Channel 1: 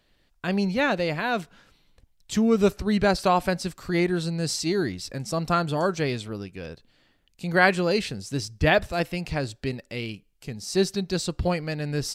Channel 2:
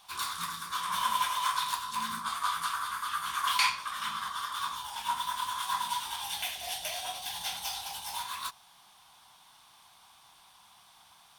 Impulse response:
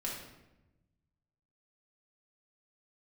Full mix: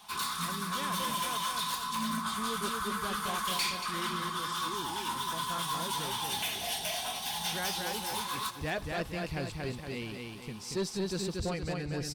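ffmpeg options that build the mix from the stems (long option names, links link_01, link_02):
-filter_complex "[0:a]volume=-7dB,afade=type=in:start_time=8.55:duration=0.43:silence=0.316228,asplit=2[link_01][link_02];[link_02]volume=-4dB[link_03];[1:a]equalizer=frequency=210:width_type=o:width=2.6:gain=9.5,aecho=1:1:4.7:0.49,acrossover=split=320|3000[link_04][link_05][link_06];[link_05]acompressor=threshold=-33dB:ratio=6[link_07];[link_04][link_07][link_06]amix=inputs=3:normalize=0,volume=2dB,asplit=2[link_08][link_09];[link_09]volume=-14.5dB[link_10];[link_03][link_10]amix=inputs=2:normalize=0,aecho=0:1:233|466|699|932|1165|1398:1|0.45|0.202|0.0911|0.041|0.0185[link_11];[link_01][link_08][link_11]amix=inputs=3:normalize=0,bandreject=frequency=600:width=13,asoftclip=type=tanh:threshold=-26.5dB"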